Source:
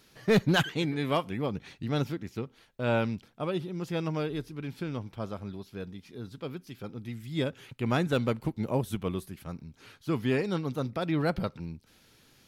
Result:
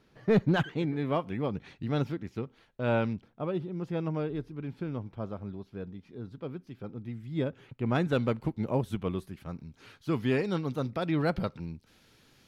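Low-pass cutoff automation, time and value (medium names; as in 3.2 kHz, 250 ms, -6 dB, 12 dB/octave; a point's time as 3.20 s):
low-pass 6 dB/octave
1.1 kHz
from 1.27 s 2.5 kHz
from 3.13 s 1.1 kHz
from 7.95 s 2.9 kHz
from 9.59 s 5.9 kHz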